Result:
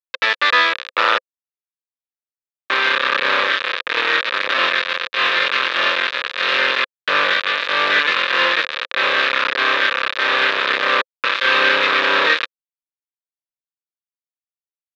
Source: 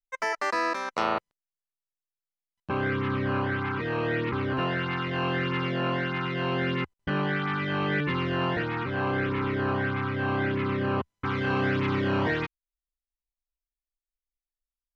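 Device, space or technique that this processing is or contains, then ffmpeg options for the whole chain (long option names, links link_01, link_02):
hand-held game console: -af "acrusher=bits=3:mix=0:aa=0.000001,highpass=100,highpass=500,equalizer=frequency=520:width_type=q:width=4:gain=10,equalizer=frequency=750:width_type=q:width=4:gain=-10,equalizer=frequency=1200:width_type=q:width=4:gain=7,equalizer=frequency=1700:width_type=q:width=4:gain=9,equalizer=frequency=2500:width_type=q:width=4:gain=7,equalizer=frequency=3700:width_type=q:width=4:gain=9,lowpass=frequency=4200:width=0.5412,lowpass=frequency=4200:width=1.3066,volume=6dB"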